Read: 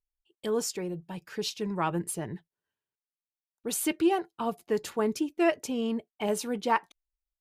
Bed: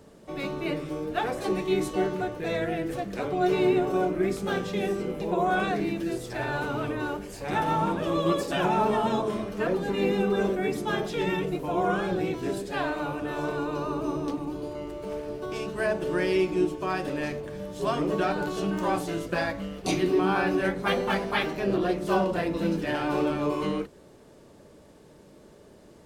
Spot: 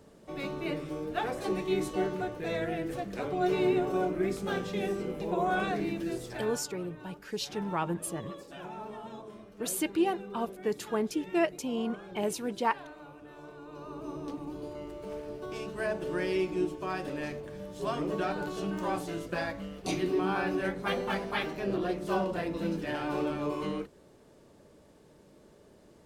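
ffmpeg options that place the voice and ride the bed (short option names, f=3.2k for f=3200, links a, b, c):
-filter_complex "[0:a]adelay=5950,volume=-2.5dB[a];[1:a]volume=8.5dB,afade=t=out:st=6.24:d=0.39:silence=0.199526,afade=t=in:st=13.61:d=1.03:silence=0.237137[b];[a][b]amix=inputs=2:normalize=0"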